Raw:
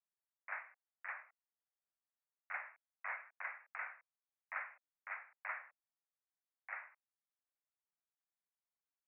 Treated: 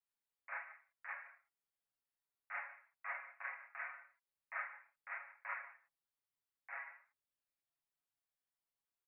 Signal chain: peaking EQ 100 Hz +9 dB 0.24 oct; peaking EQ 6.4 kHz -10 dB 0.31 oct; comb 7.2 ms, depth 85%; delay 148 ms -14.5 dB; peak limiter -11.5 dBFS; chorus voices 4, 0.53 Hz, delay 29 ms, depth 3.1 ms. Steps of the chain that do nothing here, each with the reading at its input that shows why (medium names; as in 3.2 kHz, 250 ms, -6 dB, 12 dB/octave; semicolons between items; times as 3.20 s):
peaking EQ 100 Hz: input has nothing below 450 Hz; peaking EQ 6.4 kHz: input has nothing above 2.9 kHz; peak limiter -11.5 dBFS: peak at its input -26.0 dBFS